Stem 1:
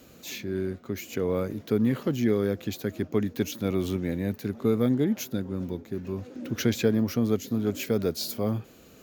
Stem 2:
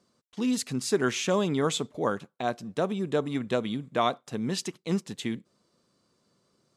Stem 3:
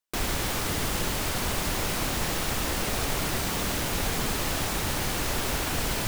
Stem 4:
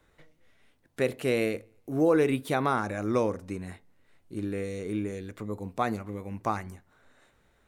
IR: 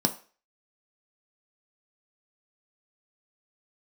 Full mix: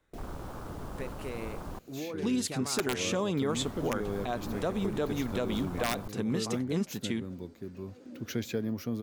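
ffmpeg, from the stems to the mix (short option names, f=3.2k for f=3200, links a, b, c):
-filter_complex "[0:a]adelay=1700,volume=-8.5dB[a];[1:a]aeval=exprs='(mod(5.31*val(0)+1,2)-1)/5.31':c=same,adelay=1850,volume=0dB[b];[2:a]afwtdn=0.0316,volume=-9.5dB,asplit=3[c][d][e];[c]atrim=end=1.79,asetpts=PTS-STARTPTS,afade=t=out:st=1.786:d=0.004:c=hsin[f];[d]atrim=start=1.79:end=3.49,asetpts=PTS-STARTPTS,volume=0[g];[e]atrim=start=3.49,asetpts=PTS-STARTPTS,afade=t=in:d=0.004:c=hsin[h];[f][g][h]concat=n=3:v=0:a=1[i];[3:a]acompressor=threshold=-28dB:ratio=6,volume=-8dB[j];[a][b][i][j]amix=inputs=4:normalize=0,alimiter=limit=-21dB:level=0:latency=1:release=143"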